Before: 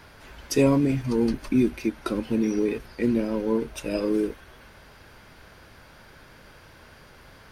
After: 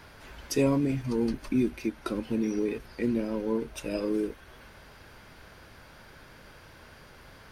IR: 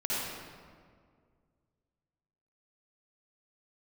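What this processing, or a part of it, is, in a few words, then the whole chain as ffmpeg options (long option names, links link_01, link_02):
parallel compression: -filter_complex "[0:a]asplit=2[link_01][link_02];[link_02]acompressor=threshold=-37dB:ratio=6,volume=-4dB[link_03];[link_01][link_03]amix=inputs=2:normalize=0,volume=-5.5dB"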